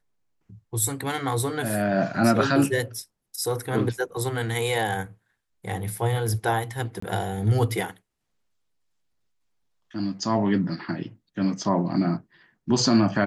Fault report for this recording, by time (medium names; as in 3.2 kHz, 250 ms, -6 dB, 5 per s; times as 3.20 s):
7.00–7.02 s: dropout 24 ms